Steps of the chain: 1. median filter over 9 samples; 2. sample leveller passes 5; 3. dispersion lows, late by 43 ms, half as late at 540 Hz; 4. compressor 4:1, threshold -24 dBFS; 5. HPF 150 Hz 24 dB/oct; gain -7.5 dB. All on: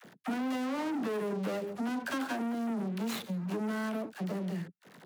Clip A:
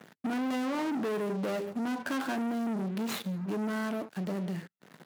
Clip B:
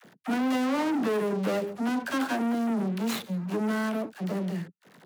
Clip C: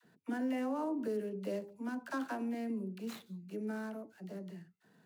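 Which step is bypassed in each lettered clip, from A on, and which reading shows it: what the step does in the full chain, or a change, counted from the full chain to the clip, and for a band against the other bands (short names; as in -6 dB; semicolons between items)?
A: 3, loudness change +1.5 LU; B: 4, mean gain reduction 5.0 dB; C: 2, momentary loudness spread change +8 LU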